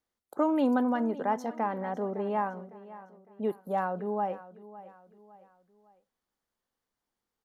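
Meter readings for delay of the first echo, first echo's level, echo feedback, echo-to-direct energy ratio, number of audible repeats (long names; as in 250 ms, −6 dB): 557 ms, −17.0 dB, 40%, −16.5 dB, 3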